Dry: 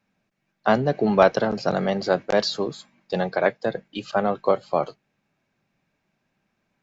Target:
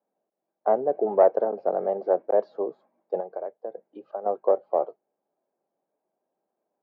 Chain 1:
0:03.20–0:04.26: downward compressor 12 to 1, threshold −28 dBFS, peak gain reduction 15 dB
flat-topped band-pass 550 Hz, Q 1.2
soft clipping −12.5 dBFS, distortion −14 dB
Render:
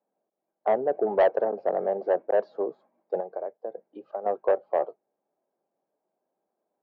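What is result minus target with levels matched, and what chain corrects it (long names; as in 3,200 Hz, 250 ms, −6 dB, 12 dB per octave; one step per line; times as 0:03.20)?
soft clipping: distortion +16 dB
0:03.20–0:04.26: downward compressor 12 to 1, threshold −28 dBFS, peak gain reduction 15 dB
flat-topped band-pass 550 Hz, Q 1.2
soft clipping −2 dBFS, distortion −30 dB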